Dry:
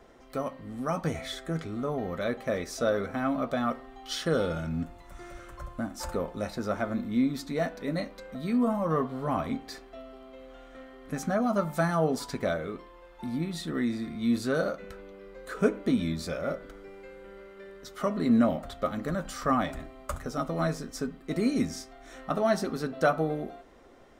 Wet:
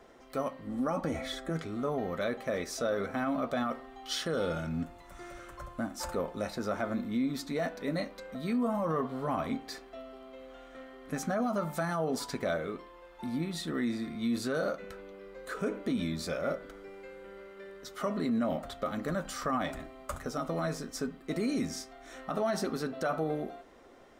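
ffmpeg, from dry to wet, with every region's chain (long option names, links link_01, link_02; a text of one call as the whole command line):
ffmpeg -i in.wav -filter_complex "[0:a]asettb=1/sr,asplit=3[link_01][link_02][link_03];[link_01]atrim=end=0.674[link_04];[link_02]atrim=start=0.67:end=1.5,asetpts=PTS-STARTPTS,afade=type=in:duration=0.004:curve=qsin,afade=type=out:start_time=0.826:duration=0.004:curve=qsin,tiltshelf=frequency=1300:gain=4,aecho=1:1:3.6:0.45,atrim=end_sample=36603[link_05];[link_03]atrim=start=1.496[link_06];[link_04][link_05]acrossfade=duration=0.004:curve1=hsin:curve2=qsin[link_07];[link_07][link_06]acrossfade=duration=0.004:curve1=qsin:curve2=hsin,alimiter=limit=-22dB:level=0:latency=1:release=37,lowshelf=frequency=140:gain=-7" out.wav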